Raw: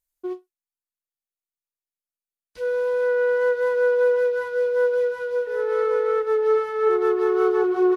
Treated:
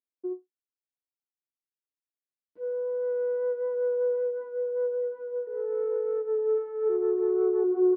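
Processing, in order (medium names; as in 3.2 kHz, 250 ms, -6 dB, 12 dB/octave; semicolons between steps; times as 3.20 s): 2.63–4.31 s: jump at every zero crossing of -38.5 dBFS; ladder band-pass 340 Hz, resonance 50%; trim +4 dB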